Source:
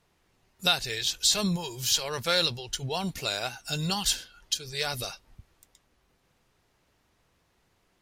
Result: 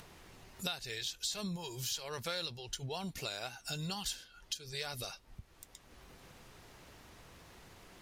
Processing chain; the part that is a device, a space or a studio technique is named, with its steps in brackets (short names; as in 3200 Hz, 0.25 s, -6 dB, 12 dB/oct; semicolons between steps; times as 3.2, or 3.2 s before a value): upward and downward compression (upward compressor, threshold -41 dBFS; compressor 3:1, threshold -38 dBFS, peak gain reduction 14.5 dB); gain -1.5 dB